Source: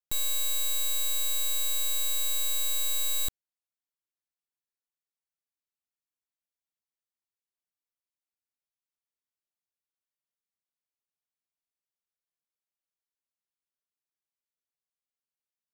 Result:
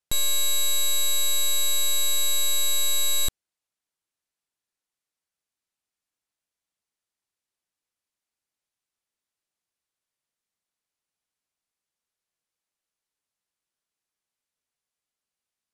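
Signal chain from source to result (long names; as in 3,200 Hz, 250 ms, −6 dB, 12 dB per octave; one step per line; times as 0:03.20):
low-pass filter 12,000 Hz 24 dB per octave
level +7 dB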